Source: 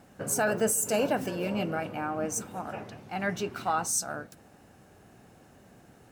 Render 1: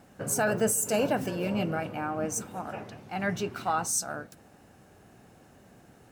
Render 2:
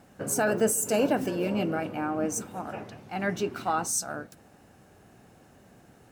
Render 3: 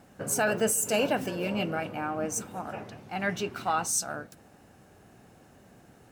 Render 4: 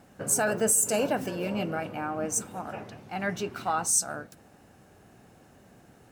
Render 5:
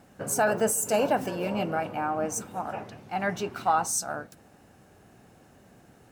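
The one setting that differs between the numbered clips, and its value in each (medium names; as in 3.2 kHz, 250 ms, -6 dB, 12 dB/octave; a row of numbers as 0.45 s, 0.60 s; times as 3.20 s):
dynamic bell, frequency: 120 Hz, 310 Hz, 2.9 kHz, 8.4 kHz, 850 Hz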